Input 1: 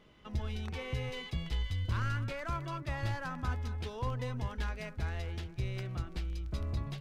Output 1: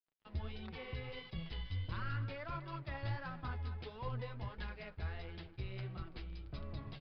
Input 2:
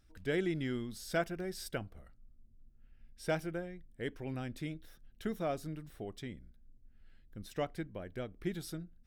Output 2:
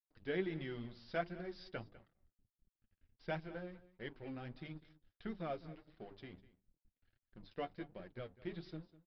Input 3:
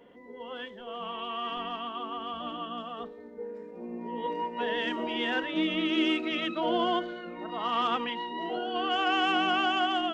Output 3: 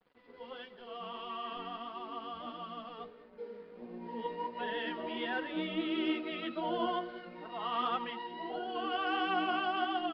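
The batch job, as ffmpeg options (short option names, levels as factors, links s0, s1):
-filter_complex "[0:a]bandreject=f=50:t=h:w=6,bandreject=f=100:t=h:w=6,bandreject=f=150:t=h:w=6,bandreject=f=200:t=h:w=6,bandreject=f=250:t=h:w=6,bandreject=f=300:t=h:w=6,bandreject=f=350:t=h:w=6,bandreject=f=400:t=h:w=6,adynamicequalizer=threshold=0.00501:dfrequency=2800:dqfactor=1.5:tfrequency=2800:tqfactor=1.5:attack=5:release=100:ratio=0.375:range=2.5:mode=cutabove:tftype=bell,aeval=exprs='sgn(val(0))*max(abs(val(0))-0.002,0)':c=same,flanger=delay=5.2:depth=6:regen=24:speed=1.5:shape=sinusoidal,asplit=2[s0][s1];[s1]aecho=0:1:200:0.119[s2];[s0][s2]amix=inputs=2:normalize=0,aresample=11025,aresample=44100,volume=0.841"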